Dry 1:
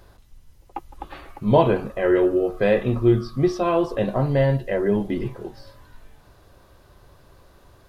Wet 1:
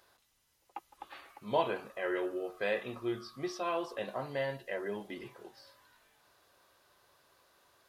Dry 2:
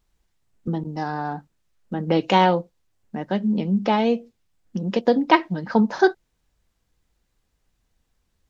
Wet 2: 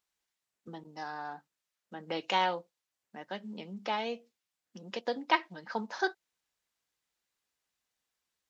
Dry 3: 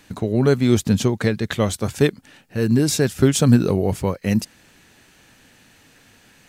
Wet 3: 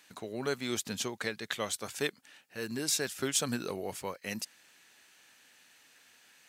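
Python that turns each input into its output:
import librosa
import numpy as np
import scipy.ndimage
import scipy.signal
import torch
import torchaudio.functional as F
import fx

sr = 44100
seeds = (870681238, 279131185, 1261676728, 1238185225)

y = fx.highpass(x, sr, hz=1300.0, slope=6)
y = F.gain(torch.from_numpy(y), -6.0).numpy()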